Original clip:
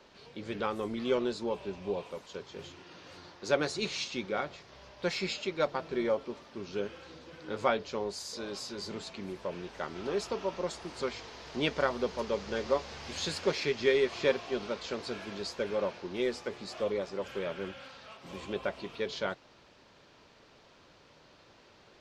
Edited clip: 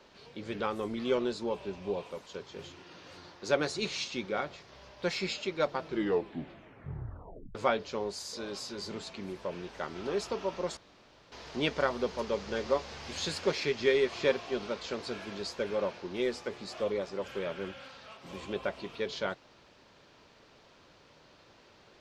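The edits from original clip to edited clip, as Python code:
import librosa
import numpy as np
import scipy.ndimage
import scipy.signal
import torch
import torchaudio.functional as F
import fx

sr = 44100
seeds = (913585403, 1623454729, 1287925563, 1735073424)

y = fx.edit(x, sr, fx.tape_stop(start_s=5.84, length_s=1.71),
    fx.room_tone_fill(start_s=10.77, length_s=0.55), tone=tone)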